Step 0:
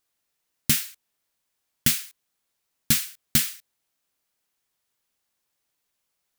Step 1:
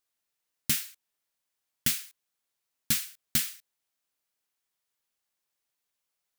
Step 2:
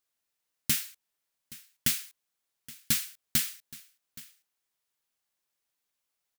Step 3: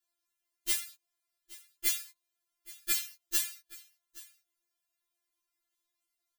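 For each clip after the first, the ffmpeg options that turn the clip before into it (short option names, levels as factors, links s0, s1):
-af "lowshelf=f=380:g=-4.5,volume=0.531"
-af "aecho=1:1:822:0.1"
-af "afftfilt=real='re*4*eq(mod(b,16),0)':imag='im*4*eq(mod(b,16),0)':win_size=2048:overlap=0.75"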